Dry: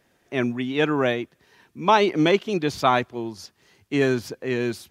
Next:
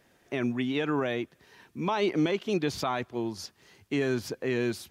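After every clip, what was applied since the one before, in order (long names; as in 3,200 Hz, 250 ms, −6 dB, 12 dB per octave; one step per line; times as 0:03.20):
in parallel at +2 dB: downward compressor, threshold −29 dBFS, peak gain reduction 16 dB
on the sum: brickwall limiter −11.5 dBFS, peak gain reduction 9 dB
level −6.5 dB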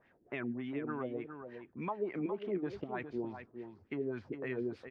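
downward compressor 3 to 1, threshold −31 dBFS, peak gain reduction 7 dB
auto-filter low-pass sine 3.4 Hz 300–2,400 Hz
single-tap delay 411 ms −8.5 dB
level −7 dB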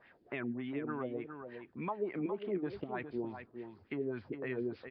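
downsampling to 11,025 Hz
one half of a high-frequency compander encoder only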